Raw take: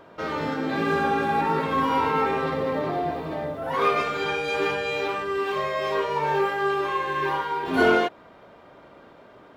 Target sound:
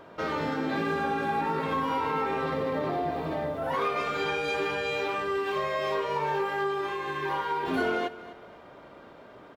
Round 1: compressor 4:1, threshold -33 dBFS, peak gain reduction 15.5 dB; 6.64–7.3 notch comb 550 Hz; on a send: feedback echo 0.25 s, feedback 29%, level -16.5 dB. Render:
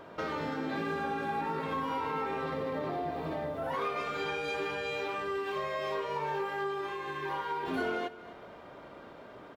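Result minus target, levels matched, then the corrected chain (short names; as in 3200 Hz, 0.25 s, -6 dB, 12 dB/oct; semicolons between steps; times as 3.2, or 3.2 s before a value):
compressor: peak gain reduction +5 dB
compressor 4:1, threshold -26 dBFS, peak gain reduction 10 dB; 6.64–7.3 notch comb 550 Hz; on a send: feedback echo 0.25 s, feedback 29%, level -16.5 dB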